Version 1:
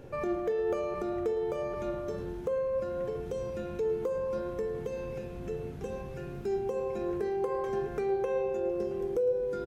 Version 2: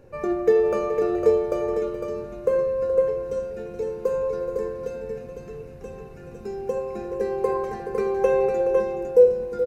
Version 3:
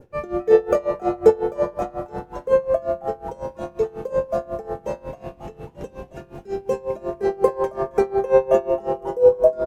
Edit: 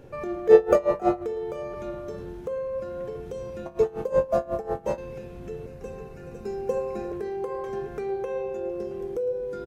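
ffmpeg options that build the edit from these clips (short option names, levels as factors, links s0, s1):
-filter_complex "[2:a]asplit=2[s0][s1];[0:a]asplit=4[s2][s3][s4][s5];[s2]atrim=end=0.492[s6];[s0]atrim=start=0.488:end=1.222[s7];[s3]atrim=start=1.218:end=3.662[s8];[s1]atrim=start=3.658:end=4.982[s9];[s4]atrim=start=4.978:end=5.662[s10];[1:a]atrim=start=5.658:end=7.122[s11];[s5]atrim=start=7.118[s12];[s6][s7]acrossfade=d=0.004:c1=hsin:c2=hsin[s13];[s13][s8]acrossfade=d=0.004:c1=hsin:c2=hsin[s14];[s14][s9]acrossfade=d=0.004:c1=hsin:c2=hsin[s15];[s15][s10]acrossfade=d=0.004:c1=hsin:c2=hsin[s16];[s16][s11]acrossfade=d=0.004:c1=hsin:c2=hsin[s17];[s17][s12]acrossfade=d=0.004:c1=hsin:c2=hsin"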